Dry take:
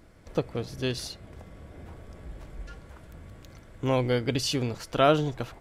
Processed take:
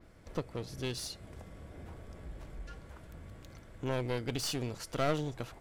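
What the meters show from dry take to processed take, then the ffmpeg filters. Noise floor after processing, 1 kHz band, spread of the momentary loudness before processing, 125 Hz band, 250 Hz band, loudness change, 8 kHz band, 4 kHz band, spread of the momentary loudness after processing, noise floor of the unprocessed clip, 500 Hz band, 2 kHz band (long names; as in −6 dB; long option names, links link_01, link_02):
−56 dBFS, −10.5 dB, 23 LU, −7.5 dB, −8.5 dB, −9.5 dB, −4.0 dB, −7.5 dB, 17 LU, −53 dBFS, −9.5 dB, −7.5 dB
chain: -filter_complex "[0:a]adynamicequalizer=threshold=0.00316:dfrequency=9200:dqfactor=0.72:tfrequency=9200:tqfactor=0.72:attack=5:release=100:ratio=0.375:range=3:mode=boostabove:tftype=bell,asplit=2[link_01][link_02];[link_02]acompressor=threshold=-37dB:ratio=6,volume=-1dB[link_03];[link_01][link_03]amix=inputs=2:normalize=0,aeval=exprs='clip(val(0),-1,0.0376)':channel_layout=same,volume=-8.5dB"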